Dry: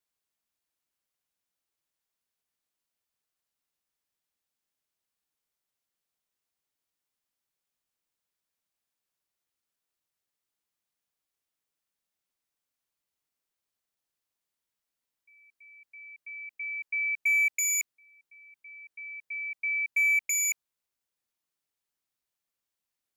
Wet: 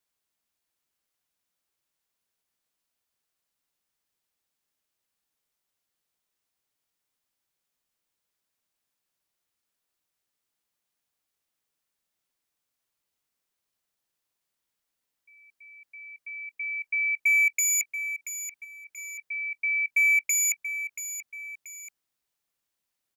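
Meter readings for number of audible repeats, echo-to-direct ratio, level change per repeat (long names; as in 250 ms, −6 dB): 2, −10.5 dB, −8.0 dB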